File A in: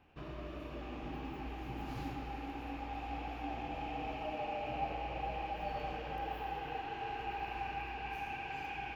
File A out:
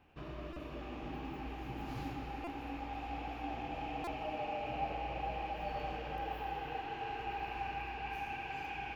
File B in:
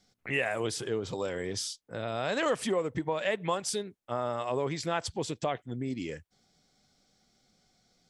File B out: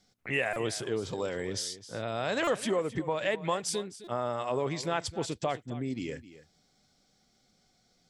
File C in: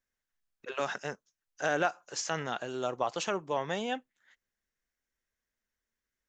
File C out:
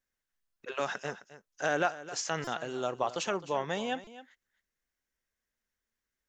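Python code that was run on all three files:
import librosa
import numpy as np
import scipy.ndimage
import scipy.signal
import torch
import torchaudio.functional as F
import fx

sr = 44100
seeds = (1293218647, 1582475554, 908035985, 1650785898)

p1 = x + fx.echo_single(x, sr, ms=262, db=-15.5, dry=0)
y = fx.buffer_glitch(p1, sr, at_s=(0.53, 2.44, 4.04), block=128, repeats=10)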